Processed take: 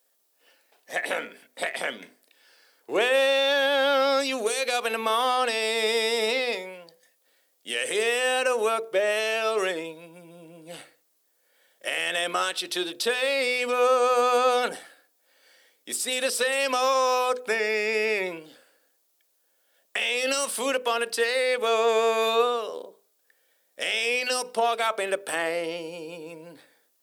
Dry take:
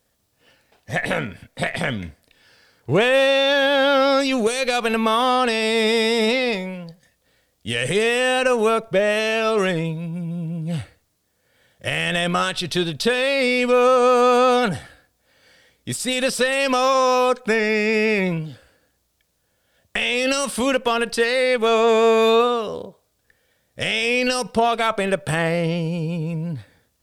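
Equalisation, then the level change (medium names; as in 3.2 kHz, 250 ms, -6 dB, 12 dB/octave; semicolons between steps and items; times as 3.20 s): high-pass 310 Hz 24 dB/octave; treble shelf 10 kHz +11 dB; hum notches 50/100/150/200/250/300/350/400/450/500 Hz; -5.0 dB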